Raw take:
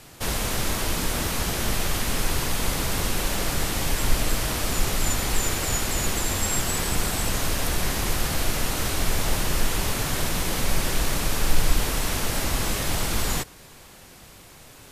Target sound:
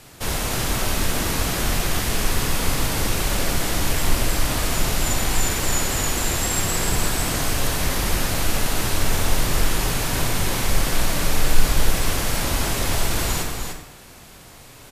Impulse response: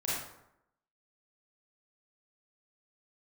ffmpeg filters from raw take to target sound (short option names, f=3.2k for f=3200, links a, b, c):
-filter_complex "[0:a]aecho=1:1:299:0.501,asplit=2[a][b];[1:a]atrim=start_sample=2205[c];[b][c]afir=irnorm=-1:irlink=0,volume=-7.5dB[d];[a][d]amix=inputs=2:normalize=0,volume=-1.5dB"